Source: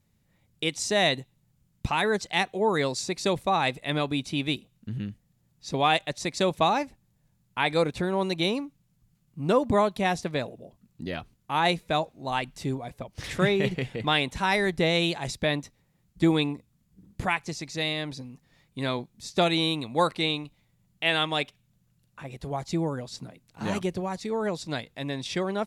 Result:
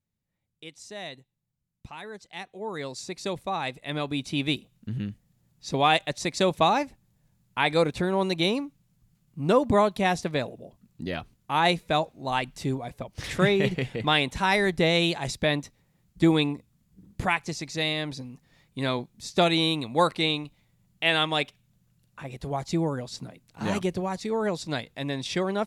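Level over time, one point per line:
0:02.20 −15.5 dB
0:03.09 −5.5 dB
0:03.74 −5.5 dB
0:04.44 +1.5 dB

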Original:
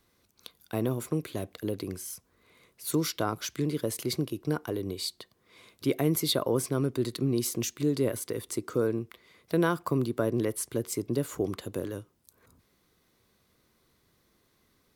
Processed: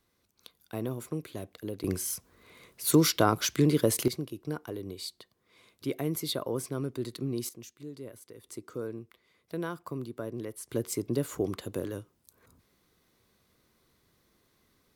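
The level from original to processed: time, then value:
−5 dB
from 0:01.84 +6 dB
from 0:04.08 −5.5 dB
from 0:07.49 −16 dB
from 0:08.44 −9.5 dB
from 0:10.69 −0.5 dB

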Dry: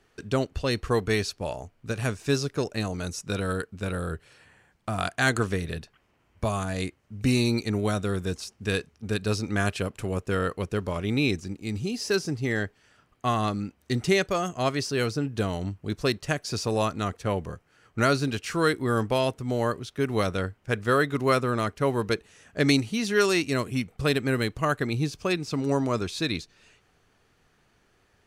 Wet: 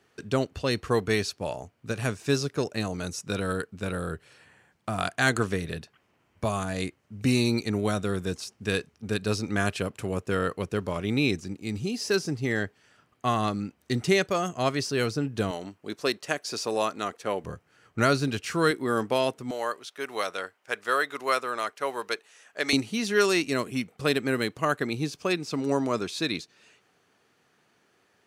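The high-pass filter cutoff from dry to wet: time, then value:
100 Hz
from 0:15.51 310 Hz
from 0:17.44 80 Hz
from 0:18.71 200 Hz
from 0:19.51 620 Hz
from 0:22.73 180 Hz

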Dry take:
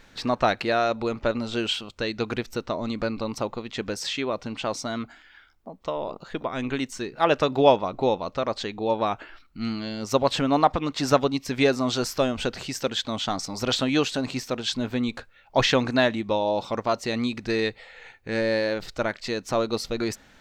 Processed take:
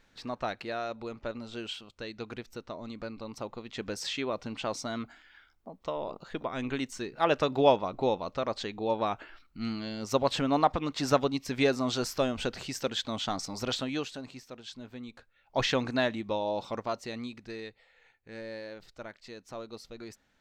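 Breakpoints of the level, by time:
0:03.19 −12 dB
0:04.00 −5 dB
0:13.54 −5 dB
0:14.41 −17 dB
0:15.13 −17 dB
0:15.63 −7 dB
0:16.74 −7 dB
0:17.66 −17 dB

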